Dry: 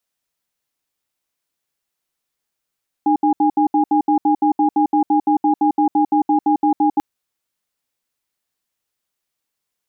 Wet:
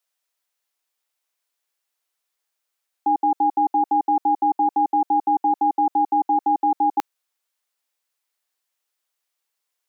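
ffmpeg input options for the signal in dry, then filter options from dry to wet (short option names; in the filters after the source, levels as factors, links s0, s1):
-f lavfi -i "aevalsrc='0.188*(sin(2*PI*303*t)+sin(2*PI*819*t))*clip(min(mod(t,0.17),0.1-mod(t,0.17))/0.005,0,1)':d=3.94:s=44100"
-af "highpass=520"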